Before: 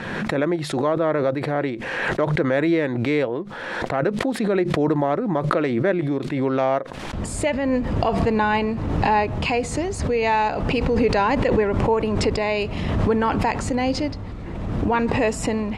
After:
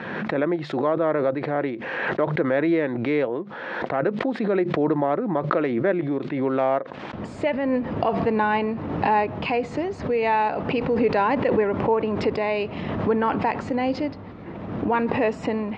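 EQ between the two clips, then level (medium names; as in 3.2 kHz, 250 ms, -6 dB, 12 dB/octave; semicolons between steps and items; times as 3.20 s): Bessel high-pass 190 Hz, order 2; distance through air 170 m; treble shelf 5.4 kHz -8.5 dB; 0.0 dB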